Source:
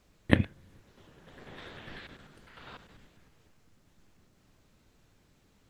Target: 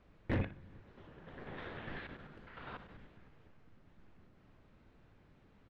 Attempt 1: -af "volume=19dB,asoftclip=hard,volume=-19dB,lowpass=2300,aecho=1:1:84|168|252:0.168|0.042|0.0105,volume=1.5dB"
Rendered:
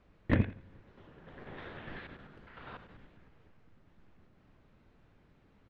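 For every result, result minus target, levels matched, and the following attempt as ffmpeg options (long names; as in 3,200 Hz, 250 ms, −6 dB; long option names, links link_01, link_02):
echo 23 ms late; gain into a clipping stage and back: distortion −5 dB
-af "volume=19dB,asoftclip=hard,volume=-19dB,lowpass=2300,aecho=1:1:61|122|183:0.168|0.042|0.0105,volume=1.5dB"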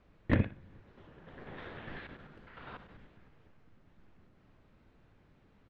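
gain into a clipping stage and back: distortion −5 dB
-af "volume=31dB,asoftclip=hard,volume=-31dB,lowpass=2300,aecho=1:1:61|122|183:0.168|0.042|0.0105,volume=1.5dB"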